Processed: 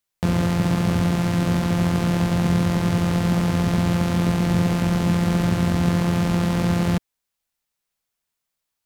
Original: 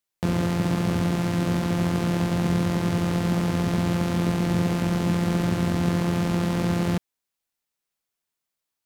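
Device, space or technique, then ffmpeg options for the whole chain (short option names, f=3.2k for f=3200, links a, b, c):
low shelf boost with a cut just above: -af "lowshelf=f=71:g=6.5,equalizer=f=340:t=o:w=0.72:g=-3.5,volume=3dB"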